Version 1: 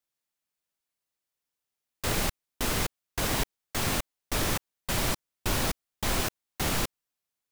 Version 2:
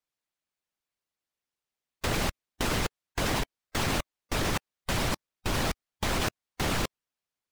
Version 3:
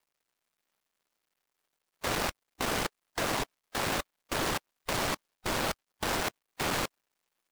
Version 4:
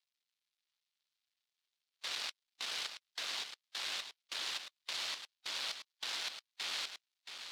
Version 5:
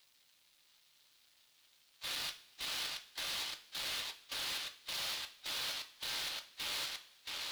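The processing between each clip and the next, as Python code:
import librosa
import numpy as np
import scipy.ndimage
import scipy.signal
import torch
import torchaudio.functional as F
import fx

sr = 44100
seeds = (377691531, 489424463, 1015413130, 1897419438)

y1 = fx.high_shelf(x, sr, hz=8300.0, db=-11.5)
y1 = fx.hpss(y1, sr, part='percussive', gain_db=9)
y1 = fx.level_steps(y1, sr, step_db=13)
y1 = y1 * librosa.db_to_amplitude(-1.5)
y2 = fx.dead_time(y1, sr, dead_ms=0.24)
y2 = fx.low_shelf(y2, sr, hz=240.0, db=-10.5)
y2 = fx.power_curve(y2, sr, exponent=0.7)
y2 = y2 * librosa.db_to_amplitude(-1.5)
y3 = fx.bandpass_q(y2, sr, hz=3900.0, q=1.9)
y3 = y3 + 10.0 ** (-8.5 / 20.0) * np.pad(y3, (int(675 * sr / 1000.0), 0))[:len(y3)]
y4 = fx.power_curve(y3, sr, exponent=0.7)
y4 = 10.0 ** (-39.0 / 20.0) * np.tanh(y4 / 10.0 ** (-39.0 / 20.0))
y4 = fx.rev_double_slope(y4, sr, seeds[0], early_s=0.34, late_s=1.7, knee_db=-19, drr_db=6.5)
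y4 = y4 * librosa.db_to_amplitude(2.0)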